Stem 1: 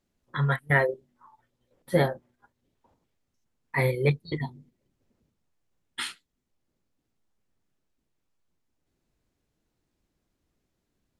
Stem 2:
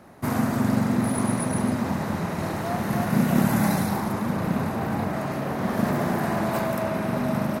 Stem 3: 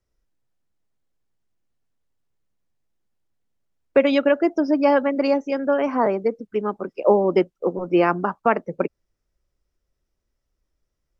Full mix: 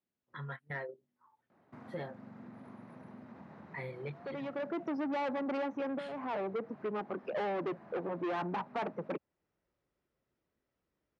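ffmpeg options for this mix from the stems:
-filter_complex "[0:a]highshelf=f=4400:g=12,volume=0.224,asplit=2[s0][s1];[1:a]acompressor=threshold=0.0282:ratio=2.5,adelay=1500,volume=0.112[s2];[2:a]adynamicequalizer=threshold=0.02:dfrequency=840:dqfactor=2.4:tfrequency=840:tqfactor=2.4:attack=5:release=100:ratio=0.375:range=3.5:mode=boostabove:tftype=bell,asoftclip=type=tanh:threshold=0.112,adelay=300,volume=0.944[s3];[s1]apad=whole_len=507040[s4];[s3][s4]sidechaincompress=threshold=0.00251:ratio=8:attack=26:release=420[s5];[s0][s2][s5]amix=inputs=3:normalize=0,asoftclip=type=tanh:threshold=0.0531,highpass=130,lowpass=2600,acompressor=threshold=0.00631:ratio=1.5"

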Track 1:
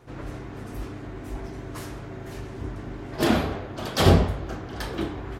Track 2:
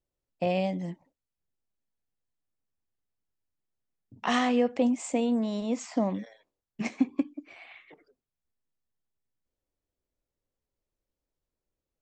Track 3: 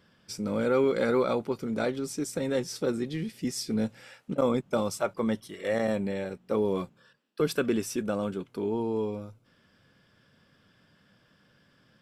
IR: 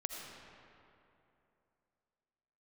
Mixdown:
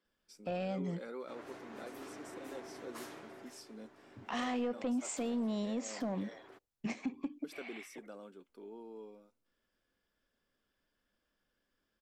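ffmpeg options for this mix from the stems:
-filter_complex "[0:a]highpass=370,asoftclip=type=tanh:threshold=0.0631,adelay=1200,volume=0.891,afade=t=out:st=3.04:d=0.56:silence=0.223872[s0];[1:a]asoftclip=type=tanh:threshold=0.112,adelay=50,volume=0.944[s1];[2:a]highpass=f=230:w=0.5412,highpass=f=230:w=1.3066,volume=0.112,asplit=3[s2][s3][s4];[s2]atrim=end=6.51,asetpts=PTS-STARTPTS,afade=t=out:st=6.506:d=0.004:c=hsin[s5];[s3]atrim=start=6.51:end=7.44,asetpts=PTS-STARTPTS,volume=0[s6];[s4]atrim=start=7.44,asetpts=PTS-STARTPTS,afade=t=in:d=0.004:c=hsin[s7];[s5][s6][s7]concat=n=3:v=0:a=1,asplit=2[s8][s9];[s9]apad=whole_len=290647[s10];[s0][s10]sidechaincompress=threshold=0.00251:ratio=3:attack=45:release=1220[s11];[s11][s1][s8]amix=inputs=3:normalize=0,alimiter=level_in=1.78:limit=0.0631:level=0:latency=1:release=149,volume=0.562"

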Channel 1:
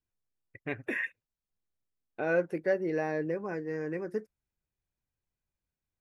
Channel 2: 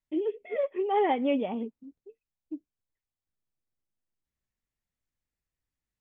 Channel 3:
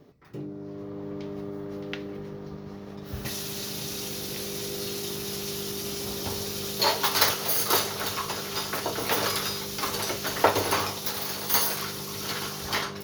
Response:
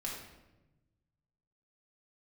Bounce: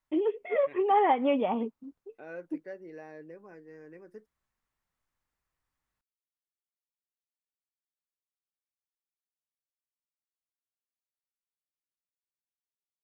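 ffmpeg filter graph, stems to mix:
-filter_complex "[0:a]highpass=160,volume=0.188[s0];[1:a]equalizer=f=1100:w=0.98:g=11.5,volume=1.12[s1];[s0][s1]amix=inputs=2:normalize=0,acompressor=threshold=0.0631:ratio=2"

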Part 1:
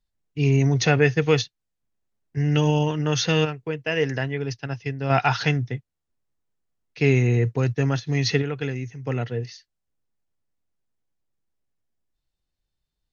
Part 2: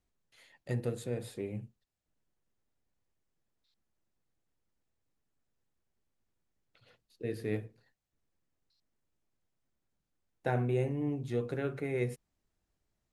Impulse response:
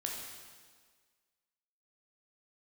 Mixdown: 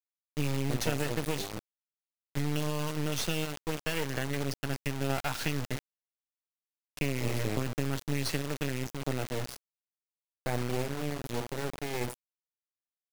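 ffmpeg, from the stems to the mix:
-filter_complex "[0:a]acompressor=threshold=0.0562:ratio=12,volume=0.794,asplit=2[s0][s1];[s1]volume=0.251[s2];[1:a]volume=1,asplit=2[s3][s4];[s4]volume=0.211[s5];[2:a]atrim=start_sample=2205[s6];[s2][s5]amix=inputs=2:normalize=0[s7];[s7][s6]afir=irnorm=-1:irlink=0[s8];[s0][s3][s8]amix=inputs=3:normalize=0,highshelf=f=7200:g=5.5,acrusher=bits=3:dc=4:mix=0:aa=0.000001"

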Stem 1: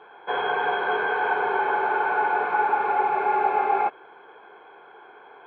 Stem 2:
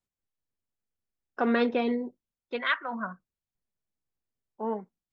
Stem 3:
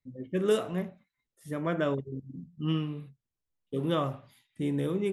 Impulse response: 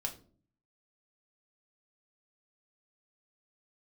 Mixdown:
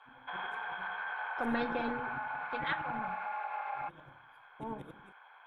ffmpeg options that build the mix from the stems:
-filter_complex "[0:a]acrossover=split=3000[s0][s1];[s1]acompressor=threshold=0.00447:ratio=4:attack=1:release=60[s2];[s0][s2]amix=inputs=2:normalize=0,highpass=f=880:w=0.5412,highpass=f=880:w=1.3066,alimiter=limit=0.0631:level=0:latency=1:release=124,volume=0.631[s3];[1:a]volume=0.282,asplit=3[s4][s5][s6];[s5]volume=0.708[s7];[2:a]acompressor=threshold=0.02:ratio=4,aeval=exprs='val(0)*pow(10,-29*if(lt(mod(-11*n/s,1),2*abs(-11)/1000),1-mod(-11*n/s,1)/(2*abs(-11)/1000),(mod(-11*n/s,1)-2*abs(-11)/1000)/(1-2*abs(-11)/1000))/20)':c=same,volume=0.562,asplit=2[s8][s9];[s9]volume=0.447[s10];[s6]apad=whole_len=225977[s11];[s8][s11]sidechaingate=range=0.0224:threshold=0.00112:ratio=16:detection=peak[s12];[3:a]atrim=start_sample=2205[s13];[s7][s10]amix=inputs=2:normalize=0[s14];[s14][s13]afir=irnorm=-1:irlink=0[s15];[s3][s4][s12][s15]amix=inputs=4:normalize=0,tremolo=f=220:d=0.519"

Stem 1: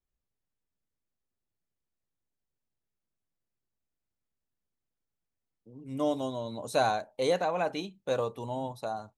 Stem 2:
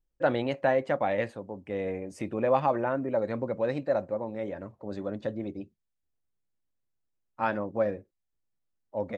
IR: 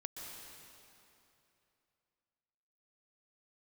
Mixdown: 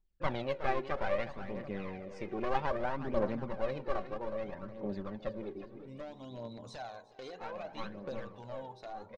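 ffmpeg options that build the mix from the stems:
-filter_complex "[0:a]bandreject=f=56.4:t=h:w=4,bandreject=f=112.8:t=h:w=4,bandreject=f=169.2:t=h:w=4,bandreject=f=225.6:t=h:w=4,bandreject=f=282:t=h:w=4,bandreject=f=338.4:t=h:w=4,bandreject=f=394.8:t=h:w=4,bandreject=f=451.2:t=h:w=4,bandreject=f=507.6:t=h:w=4,bandreject=f=564:t=h:w=4,bandreject=f=620.4:t=h:w=4,bandreject=f=676.8:t=h:w=4,bandreject=f=733.2:t=h:w=4,bandreject=f=789.6:t=h:w=4,bandreject=f=846:t=h:w=4,bandreject=f=902.4:t=h:w=4,bandreject=f=958.8:t=h:w=4,bandreject=f=1015.2:t=h:w=4,bandreject=f=1071.6:t=h:w=4,bandreject=f=1128:t=h:w=4,bandreject=f=1184.4:t=h:w=4,bandreject=f=1240.8:t=h:w=4,acompressor=threshold=0.0112:ratio=5,aeval=exprs='0.02*(abs(mod(val(0)/0.02+3,4)-2)-1)':c=same,volume=0.596,asplit=3[s0][s1][s2];[s1]volume=0.0944[s3];[1:a]aecho=1:1:5.2:0.4,aeval=exprs='clip(val(0),-1,0.0224)':c=same,volume=0.422,asplit=3[s4][s5][s6];[s5]volume=0.158[s7];[s6]volume=0.299[s8];[s2]apad=whole_len=404646[s9];[s4][s9]sidechaincompress=threshold=0.00112:ratio=4:attack=16:release=894[s10];[2:a]atrim=start_sample=2205[s11];[s7][s11]afir=irnorm=-1:irlink=0[s12];[s3][s8]amix=inputs=2:normalize=0,aecho=0:1:366|732|1098|1464|1830|2196|2562:1|0.48|0.23|0.111|0.0531|0.0255|0.0122[s13];[s0][s10][s12][s13]amix=inputs=4:normalize=0,lowpass=f=5700:w=0.5412,lowpass=f=5700:w=1.3066,aphaser=in_gain=1:out_gain=1:delay=2.9:decay=0.53:speed=0.62:type=triangular"

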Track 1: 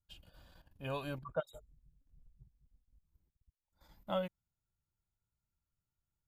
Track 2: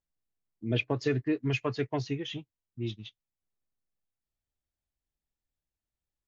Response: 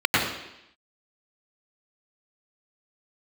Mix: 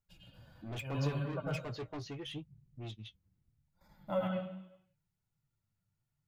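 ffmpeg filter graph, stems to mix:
-filter_complex "[0:a]equalizer=f=150:w=1.1:g=10,volume=1.06,asplit=2[s0][s1];[s1]volume=0.126[s2];[1:a]asoftclip=type=tanh:threshold=0.0211,volume=0.944,asplit=2[s3][s4];[s4]apad=whole_len=276935[s5];[s0][s5]sidechaincompress=threshold=0.00631:ratio=3:attack=16:release=906[s6];[2:a]atrim=start_sample=2205[s7];[s2][s7]afir=irnorm=-1:irlink=0[s8];[s6][s3][s8]amix=inputs=3:normalize=0,flanger=delay=4.5:depth=6.3:regen=45:speed=0.77:shape=triangular"

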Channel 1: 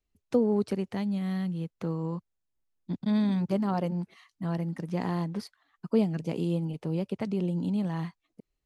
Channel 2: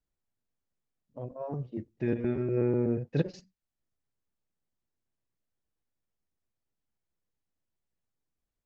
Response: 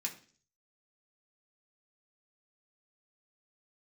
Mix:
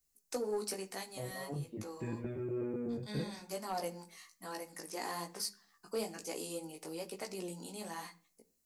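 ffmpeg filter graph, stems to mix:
-filter_complex "[0:a]highpass=490,aexciter=amount=7.2:drive=2.4:freq=4700,flanger=delay=15.5:depth=4.2:speed=1.1,volume=0.75,asplit=2[s0][s1];[s1]volume=0.631[s2];[1:a]acompressor=threshold=0.0141:ratio=2,flanger=delay=18:depth=4.3:speed=0.46,volume=1.12,asplit=2[s3][s4];[s4]apad=whole_len=381694[s5];[s0][s5]sidechaincompress=threshold=0.00708:ratio=8:attack=16:release=643[s6];[2:a]atrim=start_sample=2205[s7];[s2][s7]afir=irnorm=-1:irlink=0[s8];[s6][s3][s8]amix=inputs=3:normalize=0,asoftclip=type=tanh:threshold=0.0447"

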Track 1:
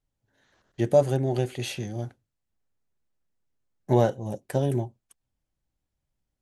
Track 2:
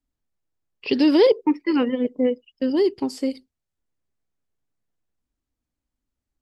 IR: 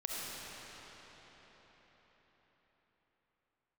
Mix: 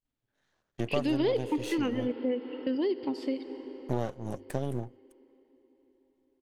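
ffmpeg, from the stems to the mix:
-filter_complex "[0:a]aeval=exprs='if(lt(val(0),0),0.251*val(0),val(0))':c=same,agate=range=0.447:threshold=0.00631:ratio=16:detection=peak,bandreject=f=50:t=h:w=6,bandreject=f=100:t=h:w=6,volume=1[s0];[1:a]highpass=91,highshelf=f=5000:t=q:w=1.5:g=-12.5,adelay=50,volume=0.631,asplit=2[s1][s2];[s2]volume=0.188[s3];[2:a]atrim=start_sample=2205[s4];[s3][s4]afir=irnorm=-1:irlink=0[s5];[s0][s1][s5]amix=inputs=3:normalize=0,acompressor=threshold=0.0355:ratio=2.5"

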